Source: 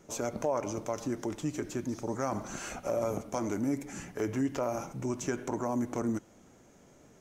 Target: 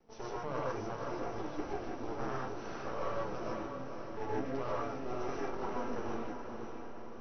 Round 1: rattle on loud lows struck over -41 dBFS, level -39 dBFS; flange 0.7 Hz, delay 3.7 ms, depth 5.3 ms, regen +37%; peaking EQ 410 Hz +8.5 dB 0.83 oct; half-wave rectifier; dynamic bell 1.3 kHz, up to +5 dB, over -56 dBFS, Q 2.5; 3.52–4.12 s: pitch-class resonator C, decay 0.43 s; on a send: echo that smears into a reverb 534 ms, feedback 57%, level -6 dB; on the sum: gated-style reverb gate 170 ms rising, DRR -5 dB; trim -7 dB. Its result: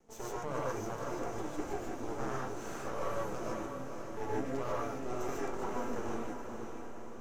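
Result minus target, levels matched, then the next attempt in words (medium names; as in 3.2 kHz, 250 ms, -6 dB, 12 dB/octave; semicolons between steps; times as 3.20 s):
8 kHz band +8.0 dB
rattle on loud lows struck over -41 dBFS, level -39 dBFS; flange 0.7 Hz, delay 3.7 ms, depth 5.3 ms, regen +37%; peaking EQ 410 Hz +8.5 dB 0.83 oct; half-wave rectifier; dynamic bell 1.3 kHz, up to +5 dB, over -56 dBFS, Q 2.5; Chebyshev low-pass 5.9 kHz, order 10; 3.52–4.12 s: pitch-class resonator C, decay 0.43 s; on a send: echo that smears into a reverb 534 ms, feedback 57%, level -6 dB; on the sum: gated-style reverb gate 170 ms rising, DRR -5 dB; trim -7 dB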